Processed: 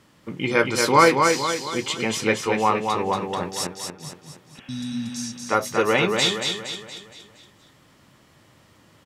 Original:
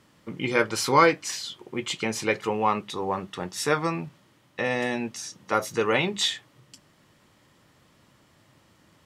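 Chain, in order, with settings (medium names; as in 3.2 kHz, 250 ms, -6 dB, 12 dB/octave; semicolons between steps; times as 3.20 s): 3.62–4.69 s: inverted gate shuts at -21 dBFS, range -31 dB; 4.58–5.15 s: spectral replace 280–3400 Hz after; feedback delay 233 ms, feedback 47%, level -4.5 dB; trim +3 dB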